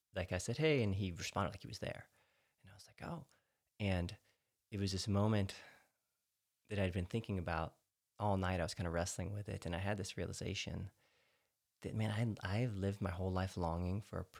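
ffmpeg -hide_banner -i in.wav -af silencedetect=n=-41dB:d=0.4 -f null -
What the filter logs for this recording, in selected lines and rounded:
silence_start: 1.99
silence_end: 3.03 | silence_duration: 1.03
silence_start: 3.18
silence_end: 3.80 | silence_duration: 0.62
silence_start: 4.12
silence_end: 4.73 | silence_duration: 0.61
silence_start: 5.51
silence_end: 6.72 | silence_duration: 1.21
silence_start: 7.68
silence_end: 8.20 | silence_duration: 0.53
silence_start: 10.85
silence_end: 11.83 | silence_duration: 0.98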